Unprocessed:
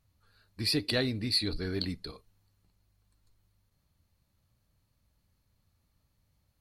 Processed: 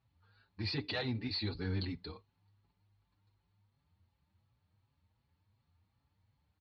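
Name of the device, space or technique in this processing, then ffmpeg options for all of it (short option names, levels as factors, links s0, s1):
barber-pole flanger into a guitar amplifier: -filter_complex "[0:a]asplit=2[s0][s1];[s1]adelay=5.7,afreqshift=2.7[s2];[s0][s2]amix=inputs=2:normalize=1,asoftclip=type=tanh:threshold=0.0422,highpass=77,equalizer=f=90:t=q:w=4:g=8,equalizer=f=600:t=q:w=4:g=-5,equalizer=f=880:t=q:w=4:g=7,lowpass=f=4100:w=0.5412,lowpass=f=4100:w=1.3066"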